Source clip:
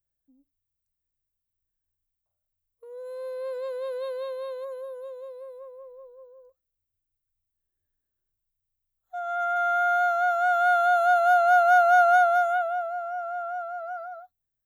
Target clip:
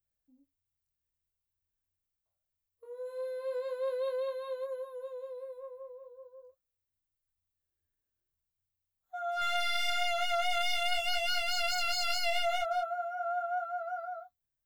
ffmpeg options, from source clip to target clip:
-filter_complex "[0:a]asettb=1/sr,asplit=3[s0][s1][s2];[s0]atrim=end=9.414[s3];[s1]atrim=start=9.41:end=9.9,asetpts=PTS-STARTPTS,afade=t=in:d=0.004:c=qsin,afade=t=out:st=0.486:d=0.004:c=qsin,aecho=1:1:3:0.42,atrim=end_sample=21609[s4];[s2]atrim=start=9.896[s5];[s3][s4]acrossfade=d=0.004:c1=hsin:c2=qsin[s6];[s6][s5]acrossfade=d=0.004:c1=qsin:c2=hsin,aeval=exprs='0.0668*(abs(mod(val(0)/0.0668+3,4)-2)-1)':c=same,flanger=delay=19:depth=7.2:speed=0.43"

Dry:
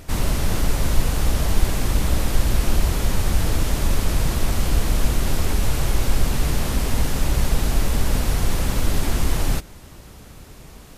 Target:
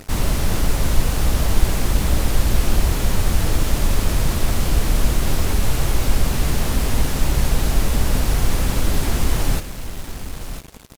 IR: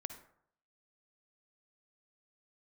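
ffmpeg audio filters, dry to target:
-af "aecho=1:1:1010:0.237,acrusher=bits=5:mix=0:aa=0.5,volume=1.19"

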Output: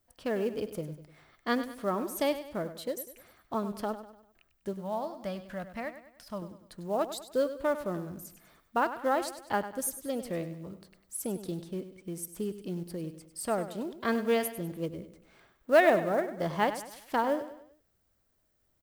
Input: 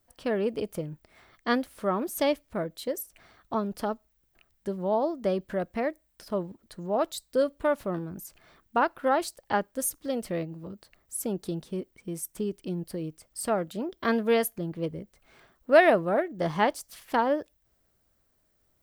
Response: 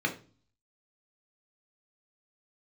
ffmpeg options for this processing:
-filter_complex "[0:a]asettb=1/sr,asplit=3[s0][s1][s2];[s0]atrim=end=4.734[s3];[s1]atrim=start=4.73:end=6.42,asetpts=PTS-STARTPTS,afade=t=in:d=0.004:c=qsin,afade=t=out:st=1.686:d=0.004:c=qsin,equalizer=f=390:t=o:w=0.98:g=-14[s4];[s2]atrim=start=6.416[s5];[s3][s4]acrossfade=d=0.004:c1=hsin:c2=qsin[s6];[s6][s5]acrossfade=d=0.004:c1=qsin:c2=hsin,acrusher=bits=7:mode=log:mix=0:aa=0.000001,aecho=1:1:99|198|297|396:0.251|0.108|0.0464|0.02,volume=0.668"

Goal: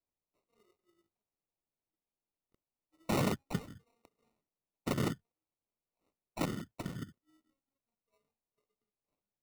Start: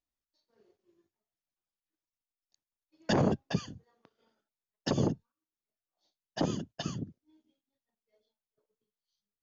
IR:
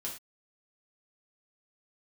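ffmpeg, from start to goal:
-af "acrusher=samples=27:mix=1:aa=0.000001,volume=0.596"

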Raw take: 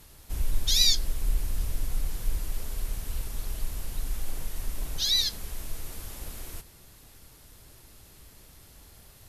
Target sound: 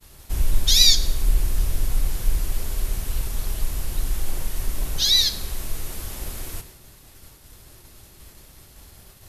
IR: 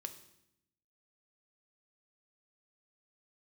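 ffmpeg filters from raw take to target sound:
-filter_complex "[0:a]agate=range=0.0224:threshold=0.00398:ratio=3:detection=peak,asplit=2[s0][s1];[1:a]atrim=start_sample=2205[s2];[s1][s2]afir=irnorm=-1:irlink=0,volume=2.51[s3];[s0][s3]amix=inputs=2:normalize=0,volume=0.841"

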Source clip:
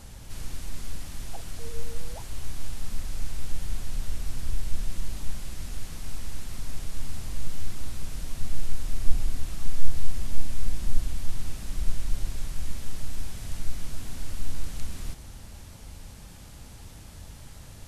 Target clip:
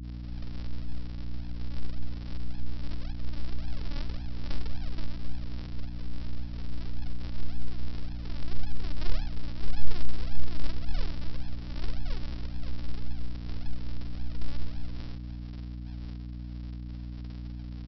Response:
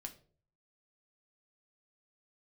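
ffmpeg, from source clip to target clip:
-filter_complex "[0:a]afftfilt=real='re':imag='-im':win_size=4096:overlap=0.75,agate=range=0.0224:threshold=0.00501:ratio=3:detection=peak,lowpass=f=1200:w=0.5412,lowpass=f=1200:w=1.3066,adynamicequalizer=threshold=0.00178:dfrequency=330:dqfactor=0.7:tfrequency=330:tqfactor=0.7:attack=5:release=100:ratio=0.375:range=2:mode=cutabove:tftype=bell,acrossover=split=230|630[s0][s1][s2];[s1]alimiter=level_in=59.6:limit=0.0631:level=0:latency=1:release=30,volume=0.0168[s3];[s0][s3][s2]amix=inputs=3:normalize=0,flanger=delay=8.8:depth=5.6:regen=-47:speed=1:shape=triangular,bandreject=f=47.01:t=h:w=4,bandreject=f=94.02:t=h:w=4,bandreject=f=141.03:t=h:w=4,bandreject=f=188.04:t=h:w=4,bandreject=f=235.05:t=h:w=4,bandreject=f=282.06:t=h:w=4,bandreject=f=329.07:t=h:w=4,bandreject=f=376.08:t=h:w=4,bandreject=f=423.09:t=h:w=4,bandreject=f=470.1:t=h:w=4,bandreject=f=517.11:t=h:w=4,bandreject=f=564.12:t=h:w=4,bandreject=f=611.13:t=h:w=4,bandreject=f=658.14:t=h:w=4,bandreject=f=705.15:t=h:w=4,bandreject=f=752.16:t=h:w=4,bandreject=f=799.17:t=h:w=4,bandreject=f=846.18:t=h:w=4,bandreject=f=893.19:t=h:w=4,bandreject=f=940.2:t=h:w=4,bandreject=f=987.21:t=h:w=4,bandreject=f=1034.22:t=h:w=4,bandreject=f=1081.23:t=h:w=4,bandreject=f=1128.24:t=h:w=4,bandreject=f=1175.25:t=h:w=4,bandreject=f=1222.26:t=h:w=4,bandreject=f=1269.27:t=h:w=4,bandreject=f=1316.28:t=h:w=4,bandreject=f=1363.29:t=h:w=4,bandreject=f=1410.3:t=h:w=4,bandreject=f=1457.31:t=h:w=4,bandreject=f=1504.32:t=h:w=4,aresample=11025,acrusher=samples=26:mix=1:aa=0.000001:lfo=1:lforange=26:lforate=1.8,aresample=44100,crystalizer=i=4.5:c=0,aeval=exprs='val(0)+0.0112*(sin(2*PI*60*n/s)+sin(2*PI*2*60*n/s)/2+sin(2*PI*3*60*n/s)/3+sin(2*PI*4*60*n/s)/4+sin(2*PI*5*60*n/s)/5)':c=same,volume=1.26"

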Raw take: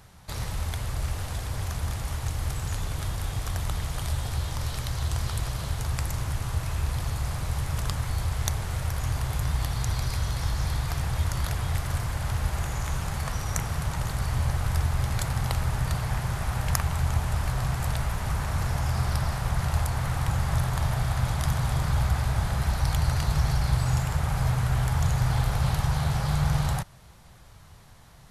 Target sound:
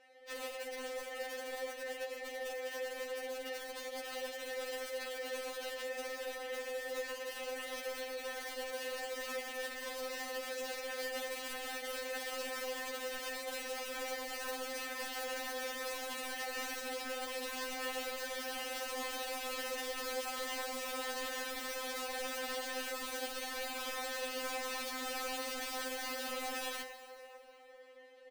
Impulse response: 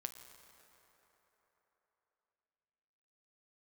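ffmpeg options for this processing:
-filter_complex "[0:a]asplit=3[s0][s1][s2];[s0]bandpass=f=530:t=q:w=8,volume=1[s3];[s1]bandpass=f=1840:t=q:w=8,volume=0.501[s4];[s2]bandpass=f=2480:t=q:w=8,volume=0.355[s5];[s3][s4][s5]amix=inputs=3:normalize=0,bandreject=f=50:t=h:w=6,bandreject=f=100:t=h:w=6,bandreject=f=150:t=h:w=6,bandreject=f=200:t=h:w=6,bandreject=f=250:t=h:w=6,aecho=1:1:6.8:0.47,alimiter=level_in=5.96:limit=0.0631:level=0:latency=1:release=18,volume=0.168,aeval=exprs='(mod(158*val(0)+1,2)-1)/158':c=same,equalizer=f=590:t=o:w=0.46:g=7.5[s6];[1:a]atrim=start_sample=2205[s7];[s6][s7]afir=irnorm=-1:irlink=0,afftfilt=real='re*3.46*eq(mod(b,12),0)':imag='im*3.46*eq(mod(b,12),0)':win_size=2048:overlap=0.75,volume=4.73"

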